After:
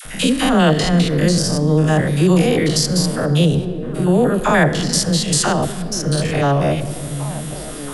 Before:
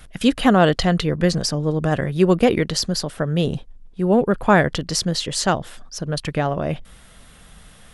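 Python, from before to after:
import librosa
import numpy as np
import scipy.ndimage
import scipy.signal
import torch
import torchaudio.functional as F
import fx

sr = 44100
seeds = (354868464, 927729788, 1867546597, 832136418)

p1 = fx.spec_steps(x, sr, hold_ms=100)
p2 = fx.peak_eq(p1, sr, hz=9700.0, db=10.5, octaves=1.5)
p3 = fx.rider(p2, sr, range_db=4, speed_s=0.5)
p4 = p2 + (p3 * librosa.db_to_amplitude(-2.5))
p5 = fx.dispersion(p4, sr, late='lows', ms=51.0, hz=730.0)
p6 = p5 + fx.echo_stepped(p5, sr, ms=685, hz=180.0, octaves=0.7, feedback_pct=70, wet_db=-10.5, dry=0)
p7 = fx.room_shoebox(p6, sr, seeds[0], volume_m3=2700.0, walls='mixed', distance_m=0.51)
y = fx.band_squash(p7, sr, depth_pct=40)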